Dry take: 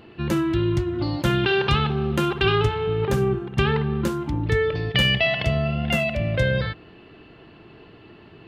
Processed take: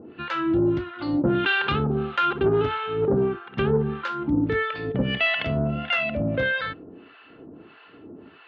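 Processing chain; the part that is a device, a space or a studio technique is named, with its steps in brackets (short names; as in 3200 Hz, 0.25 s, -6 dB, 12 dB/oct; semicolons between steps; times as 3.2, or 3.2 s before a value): guitar amplifier with harmonic tremolo (harmonic tremolo 1.6 Hz, depth 100%, crossover 780 Hz; soft clip -16 dBFS, distortion -19 dB; speaker cabinet 86–3900 Hz, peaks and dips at 120 Hz -8 dB, 270 Hz +10 dB, 480 Hz +5 dB, 1400 Hz +8 dB); gain +2.5 dB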